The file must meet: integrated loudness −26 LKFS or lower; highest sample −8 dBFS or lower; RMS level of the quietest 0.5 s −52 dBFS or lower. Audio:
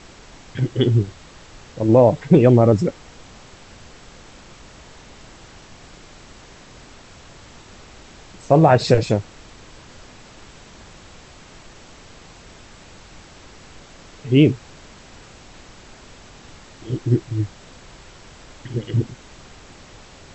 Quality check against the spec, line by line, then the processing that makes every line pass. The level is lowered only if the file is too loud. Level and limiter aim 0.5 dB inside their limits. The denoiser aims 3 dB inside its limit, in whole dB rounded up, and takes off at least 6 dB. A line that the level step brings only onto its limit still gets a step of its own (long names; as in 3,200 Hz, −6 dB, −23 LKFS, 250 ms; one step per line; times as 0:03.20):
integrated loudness −18.0 LKFS: out of spec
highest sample −1.5 dBFS: out of spec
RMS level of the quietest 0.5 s −44 dBFS: out of spec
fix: level −8.5 dB